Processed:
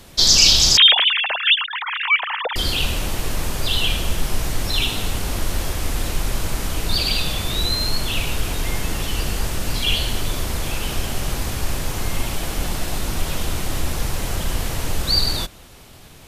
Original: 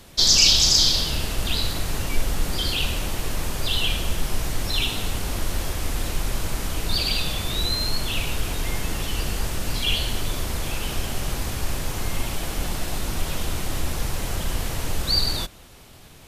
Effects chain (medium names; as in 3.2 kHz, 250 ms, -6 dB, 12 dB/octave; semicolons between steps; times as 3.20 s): 0.77–2.56 s: formants replaced by sine waves; trim +3 dB